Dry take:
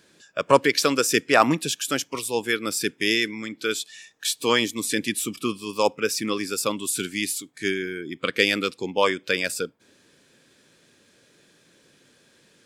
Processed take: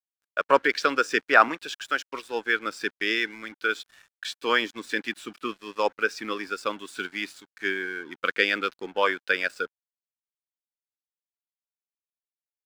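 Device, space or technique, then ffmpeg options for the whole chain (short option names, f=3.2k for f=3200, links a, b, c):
pocket radio on a weak battery: -filter_complex "[0:a]asettb=1/sr,asplit=3[a][b][c];[a]atrim=end=1.484[d];[b]atrim=start=1.48:end=2.1,asetpts=PTS-STARTPTS,afade=t=in:d=0.004:c=qsin,afade=t=out:st=0.616:d=0.004:c=qsin,highpass=f=470:p=1[e];[c]atrim=start=2.096[f];[d][e]acrossfade=d=0.004:c1=hsin:c2=qsin[g];[g][f]acrossfade=d=0.004:c1=qsin:c2=hsin,highpass=290,lowpass=4k,aeval=exprs='sgn(val(0))*max(abs(val(0))-0.00531,0)':c=same,equalizer=f=1.5k:t=o:w=0.51:g=11,volume=-3.5dB"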